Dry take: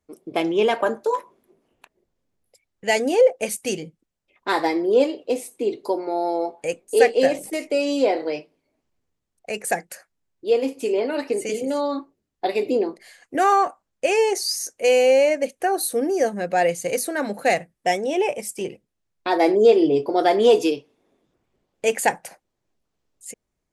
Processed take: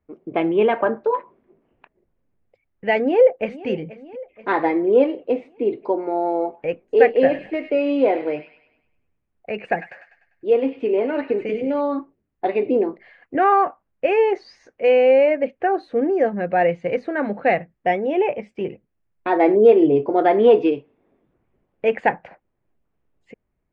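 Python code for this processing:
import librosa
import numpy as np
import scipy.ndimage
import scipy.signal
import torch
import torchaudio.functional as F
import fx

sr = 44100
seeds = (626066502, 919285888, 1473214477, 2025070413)

y = fx.echo_throw(x, sr, start_s=2.96, length_s=0.71, ms=480, feedback_pct=60, wet_db=-17.0)
y = fx.echo_wet_highpass(y, sr, ms=99, feedback_pct=47, hz=1800.0, wet_db=-7.5, at=(7.06, 11.81))
y = scipy.signal.sosfilt(scipy.signal.butter(4, 2500.0, 'lowpass', fs=sr, output='sos'), y)
y = fx.low_shelf(y, sr, hz=240.0, db=5.0)
y = y * librosa.db_to_amplitude(1.0)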